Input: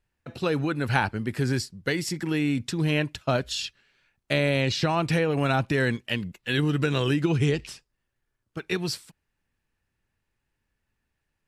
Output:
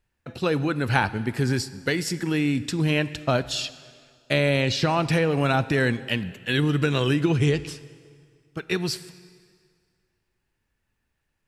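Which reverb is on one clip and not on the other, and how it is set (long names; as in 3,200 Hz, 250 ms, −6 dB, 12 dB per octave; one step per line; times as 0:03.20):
dense smooth reverb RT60 2 s, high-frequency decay 0.9×, DRR 15.5 dB
level +2 dB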